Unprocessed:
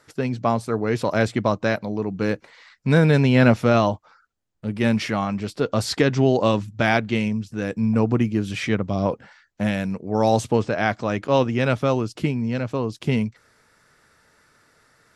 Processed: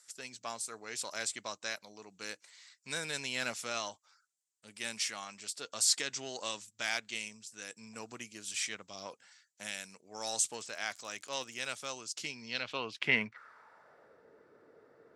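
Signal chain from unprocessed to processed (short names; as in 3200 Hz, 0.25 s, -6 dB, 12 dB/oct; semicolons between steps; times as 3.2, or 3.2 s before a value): added harmonics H 6 -32 dB, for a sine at -2.5 dBFS; 10.51–11.89 crackle 41/s -36 dBFS; band-pass sweep 7900 Hz -> 430 Hz, 12.04–14.25; gain +8 dB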